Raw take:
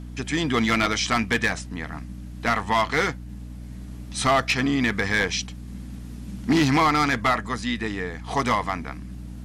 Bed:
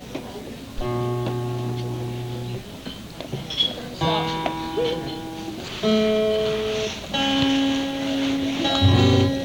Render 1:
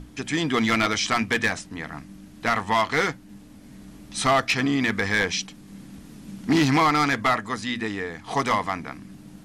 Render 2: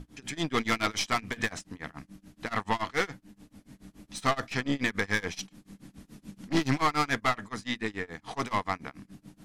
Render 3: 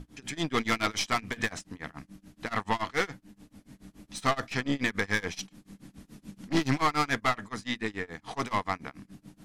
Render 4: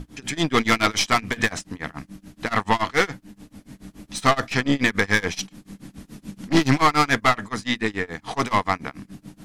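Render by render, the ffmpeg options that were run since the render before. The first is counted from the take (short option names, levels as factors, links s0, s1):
-af "bandreject=f=60:t=h:w=6,bandreject=f=120:t=h:w=6,bandreject=f=180:t=h:w=6,bandreject=f=240:t=h:w=6"
-af "aeval=exprs='(tanh(7.08*val(0)+0.6)-tanh(0.6))/7.08':c=same,tremolo=f=7:d=0.96"
-af anull
-af "volume=2.66"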